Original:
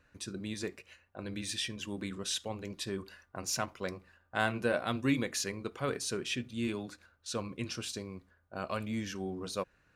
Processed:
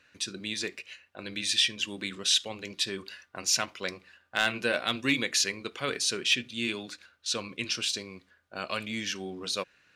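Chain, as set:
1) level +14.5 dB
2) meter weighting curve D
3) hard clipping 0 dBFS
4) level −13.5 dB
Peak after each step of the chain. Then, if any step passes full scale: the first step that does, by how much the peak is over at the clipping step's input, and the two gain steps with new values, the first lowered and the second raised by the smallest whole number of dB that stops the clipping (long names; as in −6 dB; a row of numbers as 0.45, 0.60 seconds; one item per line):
+1.5, +5.5, 0.0, −13.5 dBFS
step 1, 5.5 dB
step 1 +8.5 dB, step 4 −7.5 dB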